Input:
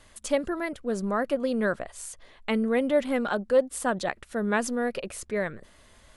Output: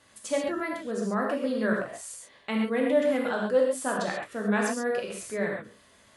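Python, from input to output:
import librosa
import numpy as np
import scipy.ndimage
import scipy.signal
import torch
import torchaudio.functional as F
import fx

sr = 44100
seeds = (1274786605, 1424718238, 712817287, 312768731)

y = scipy.signal.sosfilt(scipy.signal.butter(2, 120.0, 'highpass', fs=sr, output='sos'), x)
y = fx.rev_gated(y, sr, seeds[0], gate_ms=160, shape='flat', drr_db=-2.0)
y = F.gain(torch.from_numpy(y), -4.5).numpy()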